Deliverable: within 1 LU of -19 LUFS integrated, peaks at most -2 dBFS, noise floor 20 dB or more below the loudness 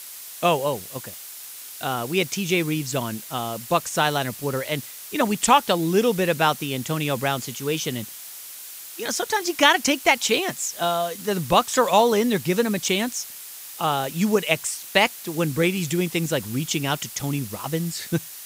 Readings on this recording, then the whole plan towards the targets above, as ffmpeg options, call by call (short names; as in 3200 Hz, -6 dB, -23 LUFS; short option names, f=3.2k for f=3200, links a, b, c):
noise floor -39 dBFS; noise floor target -43 dBFS; loudness -23.0 LUFS; peak -1.5 dBFS; loudness target -19.0 LUFS
-> -af "afftdn=nr=6:nf=-39"
-af "volume=4dB,alimiter=limit=-2dB:level=0:latency=1"